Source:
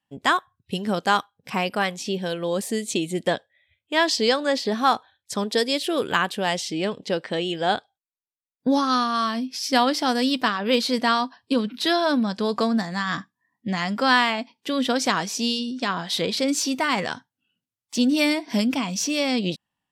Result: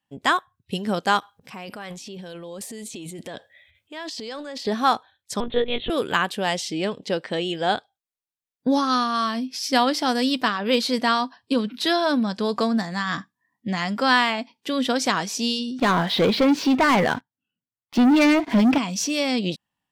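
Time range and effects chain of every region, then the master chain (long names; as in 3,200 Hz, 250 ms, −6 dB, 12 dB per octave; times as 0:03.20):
0:01.19–0:04.67: downward compressor 2 to 1, threshold −43 dBFS + transient designer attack −1 dB, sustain +11 dB
0:05.40–0:05.90: double-tracking delay 13 ms −13.5 dB + one-pitch LPC vocoder at 8 kHz 240 Hz
0:15.79–0:18.78: high-frequency loss of the air 340 metres + leveller curve on the samples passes 3
whole clip: no processing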